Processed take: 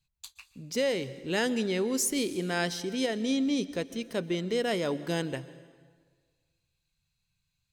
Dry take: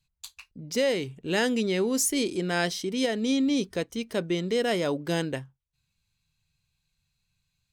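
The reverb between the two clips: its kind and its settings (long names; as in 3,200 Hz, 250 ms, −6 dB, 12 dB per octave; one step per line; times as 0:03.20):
dense smooth reverb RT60 1.6 s, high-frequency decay 0.8×, pre-delay 110 ms, DRR 16 dB
level −3 dB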